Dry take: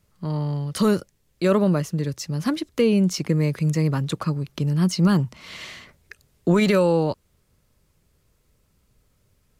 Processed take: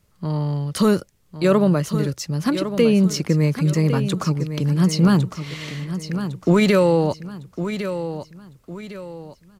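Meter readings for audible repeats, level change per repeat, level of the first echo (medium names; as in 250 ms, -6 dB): 3, -9.0 dB, -10.0 dB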